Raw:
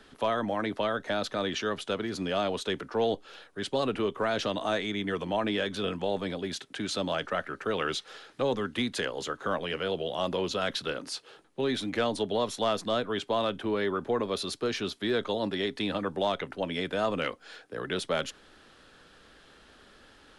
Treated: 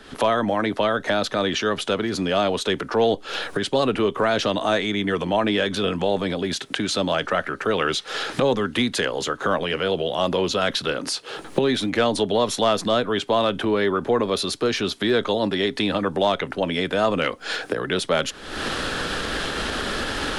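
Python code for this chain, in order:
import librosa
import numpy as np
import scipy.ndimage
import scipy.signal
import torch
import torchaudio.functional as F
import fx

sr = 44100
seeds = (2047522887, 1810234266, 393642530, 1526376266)

y = fx.recorder_agc(x, sr, target_db=-25.5, rise_db_per_s=60.0, max_gain_db=30)
y = F.gain(torch.from_numpy(y), 8.0).numpy()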